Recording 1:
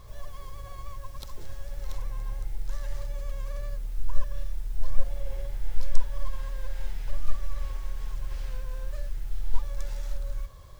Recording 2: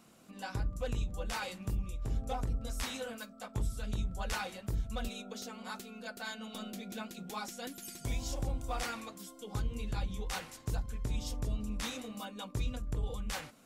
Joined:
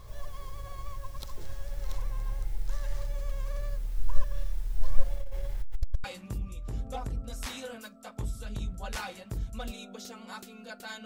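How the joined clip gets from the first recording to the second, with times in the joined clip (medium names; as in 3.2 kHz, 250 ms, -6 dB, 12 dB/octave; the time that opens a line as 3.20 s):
recording 1
5.15–6.04 s: transformer saturation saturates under 110 Hz
6.04 s: go over to recording 2 from 1.41 s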